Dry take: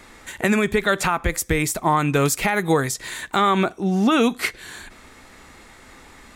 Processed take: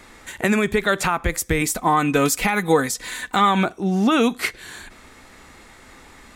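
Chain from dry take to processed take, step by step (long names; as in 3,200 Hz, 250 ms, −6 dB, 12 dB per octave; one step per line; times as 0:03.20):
0:01.61–0:03.65: comb filter 4 ms, depth 55%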